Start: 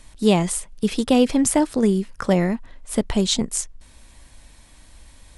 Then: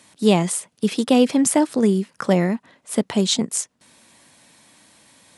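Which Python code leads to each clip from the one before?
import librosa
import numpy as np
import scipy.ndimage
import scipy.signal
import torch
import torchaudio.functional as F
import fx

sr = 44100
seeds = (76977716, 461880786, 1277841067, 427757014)

y = scipy.signal.sosfilt(scipy.signal.butter(4, 140.0, 'highpass', fs=sr, output='sos'), x)
y = y * librosa.db_to_amplitude(1.0)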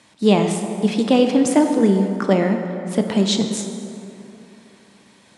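y = fx.air_absorb(x, sr, metres=65.0)
y = fx.rev_plate(y, sr, seeds[0], rt60_s=3.1, hf_ratio=0.5, predelay_ms=0, drr_db=4.5)
y = y * librosa.db_to_amplitude(1.0)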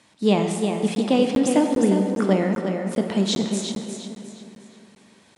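y = fx.echo_feedback(x, sr, ms=357, feedback_pct=34, wet_db=-7.0)
y = fx.buffer_crackle(y, sr, first_s=0.95, period_s=0.4, block=512, kind='zero')
y = y * librosa.db_to_amplitude(-4.0)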